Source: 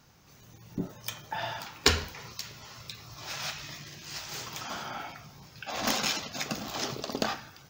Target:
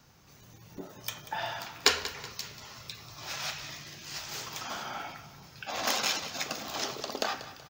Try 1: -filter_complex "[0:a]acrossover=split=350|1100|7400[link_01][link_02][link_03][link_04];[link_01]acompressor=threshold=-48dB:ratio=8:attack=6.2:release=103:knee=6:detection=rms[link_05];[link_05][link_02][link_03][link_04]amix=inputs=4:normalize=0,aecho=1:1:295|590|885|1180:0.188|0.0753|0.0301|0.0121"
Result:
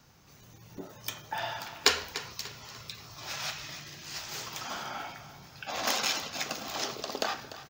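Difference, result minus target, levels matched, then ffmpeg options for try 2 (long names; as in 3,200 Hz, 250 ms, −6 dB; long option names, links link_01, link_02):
echo 107 ms late
-filter_complex "[0:a]acrossover=split=350|1100|7400[link_01][link_02][link_03][link_04];[link_01]acompressor=threshold=-48dB:ratio=8:attack=6.2:release=103:knee=6:detection=rms[link_05];[link_05][link_02][link_03][link_04]amix=inputs=4:normalize=0,aecho=1:1:188|376|564|752:0.188|0.0753|0.0301|0.0121"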